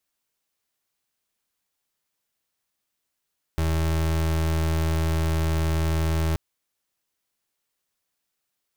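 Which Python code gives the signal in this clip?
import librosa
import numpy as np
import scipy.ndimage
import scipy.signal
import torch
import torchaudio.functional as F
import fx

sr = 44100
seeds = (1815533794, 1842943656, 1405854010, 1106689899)

y = fx.pulse(sr, length_s=2.78, hz=80.5, level_db=-23.0, duty_pct=33)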